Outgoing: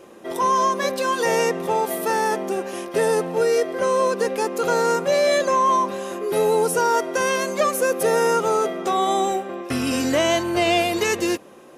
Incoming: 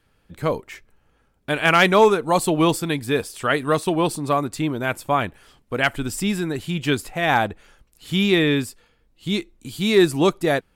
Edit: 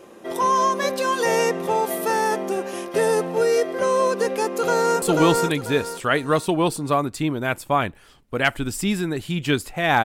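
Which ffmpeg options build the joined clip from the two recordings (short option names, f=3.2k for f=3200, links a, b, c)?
-filter_complex "[0:a]apad=whole_dur=10.04,atrim=end=10.04,atrim=end=5.022[a];[1:a]atrim=start=2.408:end=7.43[b];[a][b]acrossfade=d=0.004:c1=hsin:c2=hsin,asplit=2[c][d];[d]afade=t=in:st=4.46:d=0.01,afade=t=out:st=5.02:d=0.01,aecho=0:1:490|980|1470|1960:0.794328|0.238298|0.0714895|0.0214469[e];[c][e]amix=inputs=2:normalize=0"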